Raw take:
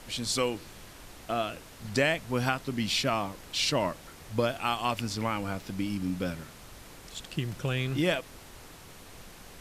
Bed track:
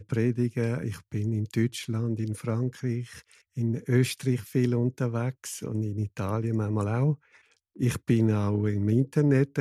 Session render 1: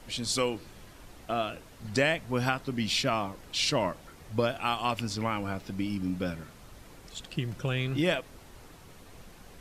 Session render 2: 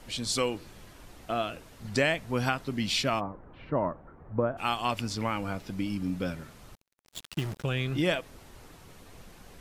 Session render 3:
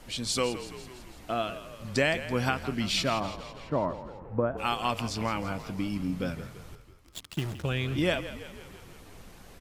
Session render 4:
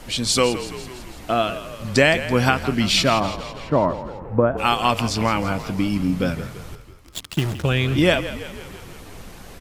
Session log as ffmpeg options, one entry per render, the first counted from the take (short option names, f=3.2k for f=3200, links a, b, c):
-af "afftdn=nr=6:nf=-50"
-filter_complex "[0:a]asplit=3[a][b][c];[a]afade=t=out:st=3.19:d=0.02[d];[b]lowpass=f=1.4k:w=0.5412,lowpass=f=1.4k:w=1.3066,afade=t=in:st=3.19:d=0.02,afade=t=out:st=4.57:d=0.02[e];[c]afade=t=in:st=4.57:d=0.02[f];[d][e][f]amix=inputs=3:normalize=0,asettb=1/sr,asplit=3[g][h][i];[g]atrim=end=6.754[j];[h]atrim=start=6.75:end=7.64,asetpts=PTS-STARTPTS,afade=t=in:d=0.004:c=qsin,afade=t=out:st=0.886:d=0.004:c=qsin,acrusher=bits=5:mix=0:aa=0.5[k];[i]atrim=start=7.636[l];[j][k]acrossfade=d=0.004:c1=hsin:c2=qsin[m];[m][l]acrossfade=d=0.004:c1=qsin:c2=hsin"
-filter_complex "[0:a]asplit=8[a][b][c][d][e][f][g][h];[b]adelay=166,afreqshift=-41,volume=-13dB[i];[c]adelay=332,afreqshift=-82,volume=-17.3dB[j];[d]adelay=498,afreqshift=-123,volume=-21.6dB[k];[e]adelay=664,afreqshift=-164,volume=-25.9dB[l];[f]adelay=830,afreqshift=-205,volume=-30.2dB[m];[g]adelay=996,afreqshift=-246,volume=-34.5dB[n];[h]adelay=1162,afreqshift=-287,volume=-38.8dB[o];[a][i][j][k][l][m][n][o]amix=inputs=8:normalize=0"
-af "volume=10dB"